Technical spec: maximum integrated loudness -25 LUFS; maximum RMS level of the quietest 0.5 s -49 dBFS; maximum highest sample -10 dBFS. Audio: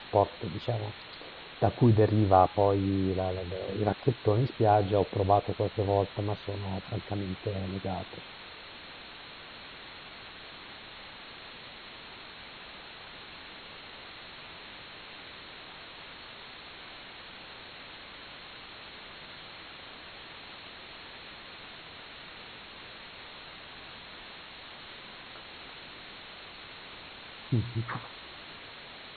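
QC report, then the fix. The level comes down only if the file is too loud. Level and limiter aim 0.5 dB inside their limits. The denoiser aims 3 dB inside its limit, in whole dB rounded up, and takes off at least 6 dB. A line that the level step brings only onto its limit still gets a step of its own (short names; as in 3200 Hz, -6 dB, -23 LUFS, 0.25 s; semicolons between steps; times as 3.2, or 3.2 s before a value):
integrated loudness -29.0 LUFS: OK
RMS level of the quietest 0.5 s -47 dBFS: fail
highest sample -7.5 dBFS: fail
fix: denoiser 6 dB, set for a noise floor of -47 dBFS; limiter -10.5 dBFS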